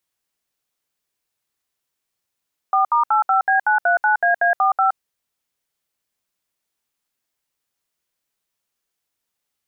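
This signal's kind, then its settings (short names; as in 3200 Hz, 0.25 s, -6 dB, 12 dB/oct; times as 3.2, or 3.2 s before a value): DTMF "4*85B939AA45", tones 0.119 s, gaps 68 ms, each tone -16 dBFS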